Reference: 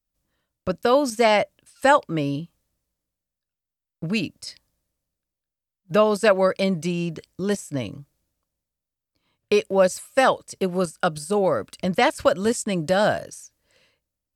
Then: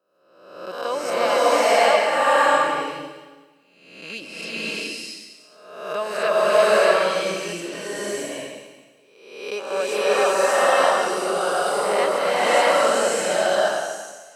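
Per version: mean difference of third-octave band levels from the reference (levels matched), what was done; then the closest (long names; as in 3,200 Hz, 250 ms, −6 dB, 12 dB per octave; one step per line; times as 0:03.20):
13.5 dB: peak hold with a rise ahead of every peak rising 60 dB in 0.91 s
high-pass filter 420 Hz 12 dB per octave
slow-attack reverb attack 650 ms, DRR −9.5 dB
level −9 dB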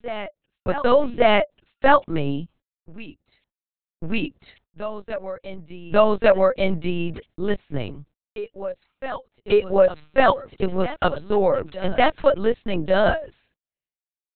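7.5 dB: noise gate −51 dBFS, range −39 dB
backwards echo 1,146 ms −14 dB
linear-prediction vocoder at 8 kHz pitch kept
level +2 dB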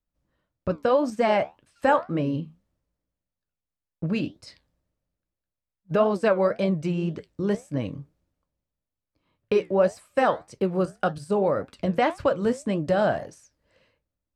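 4.5 dB: low-pass filter 1,400 Hz 6 dB per octave
in parallel at −0.5 dB: downward compressor, threshold −26 dBFS, peak gain reduction 12.5 dB
on the sum: flanger 1.8 Hz, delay 8 ms, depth 8.4 ms, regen −67%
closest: third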